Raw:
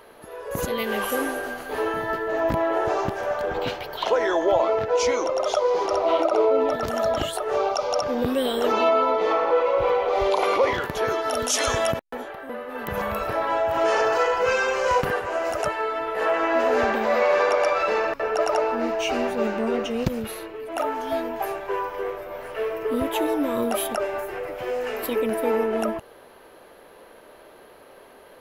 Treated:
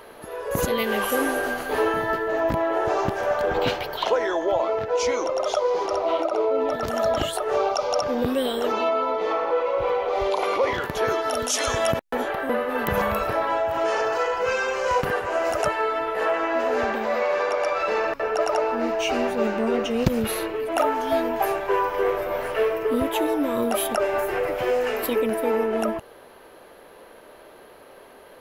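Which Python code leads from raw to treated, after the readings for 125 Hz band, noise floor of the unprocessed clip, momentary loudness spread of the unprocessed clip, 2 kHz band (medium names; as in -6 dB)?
+2.0 dB, -49 dBFS, 9 LU, +0.5 dB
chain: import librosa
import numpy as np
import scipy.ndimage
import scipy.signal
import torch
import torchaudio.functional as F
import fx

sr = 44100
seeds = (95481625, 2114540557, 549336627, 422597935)

y = fx.rider(x, sr, range_db=10, speed_s=0.5)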